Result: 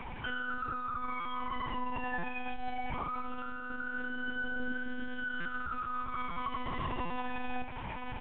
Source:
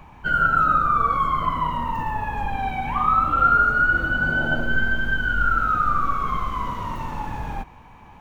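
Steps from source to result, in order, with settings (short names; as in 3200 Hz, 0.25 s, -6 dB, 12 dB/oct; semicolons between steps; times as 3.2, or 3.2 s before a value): octaver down 1 oct, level -4 dB; compressor 5:1, threshold -32 dBFS, peak gain reduction 17 dB; HPF 130 Hz 12 dB/oct; high shelf 2400 Hz +12 dB; comb 3.6 ms, depth 52%; limiter -29.5 dBFS, peak gain reduction 11 dB; reverb, pre-delay 46 ms, DRR 8 dB; vocal rider within 4 dB 0.5 s; bell 230 Hz +7 dB 0.87 oct; monotone LPC vocoder at 8 kHz 250 Hz; stuck buffer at 1.2/2.18/5.4/6.31/7.05, samples 256, times 8; µ-law 64 kbps 8000 Hz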